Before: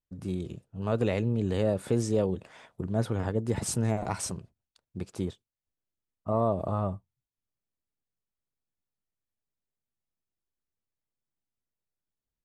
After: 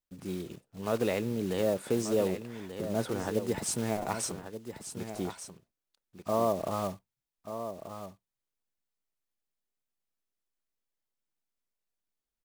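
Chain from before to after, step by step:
one scale factor per block 5 bits
parametric band 90 Hz −12 dB 1.6 octaves
single-tap delay 1,185 ms −10 dB

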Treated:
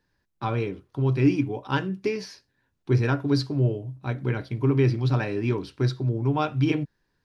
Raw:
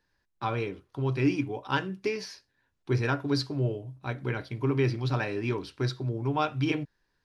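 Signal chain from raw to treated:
parametric band 160 Hz +6.5 dB 2.9 octaves

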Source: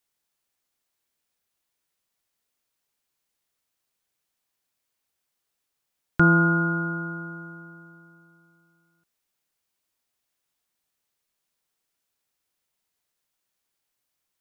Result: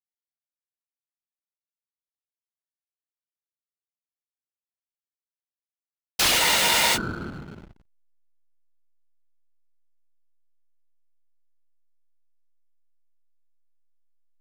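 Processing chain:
wrap-around overflow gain 18 dB
random phases in short frames
slack as between gear wheels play −33.5 dBFS
frozen spectrum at 0:06.41, 0.55 s
level +3 dB

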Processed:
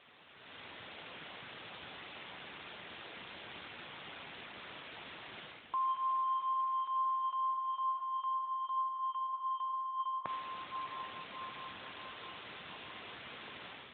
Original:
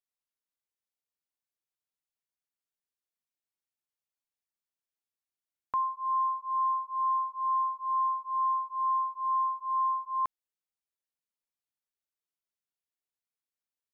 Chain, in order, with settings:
converter with a step at zero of −44 dBFS
automatic gain control gain up to 12.5 dB
brickwall limiter −14.5 dBFS, peak gain reduction 4 dB
reversed playback
downward compressor 16 to 1, threshold −33 dBFS, peak gain reduction 16.5 dB
reversed playback
feedback delay with all-pass diffusion 686 ms, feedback 55%, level −10 dB
on a send at −23 dB: convolution reverb RT60 5.0 s, pre-delay 23 ms
on the sum: level +1.5 dB
AMR narrowband 12.2 kbit/s 8,000 Hz

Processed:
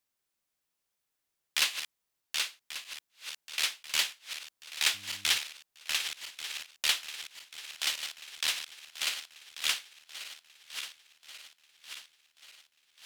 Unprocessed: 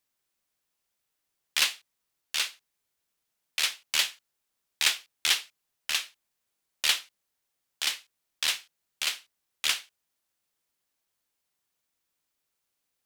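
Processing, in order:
feedback delay that plays each chunk backwards 569 ms, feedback 72%, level −10.5 dB
0:04.93–0:05.36: hum with harmonics 100 Hz, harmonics 3, −55 dBFS
level −3 dB

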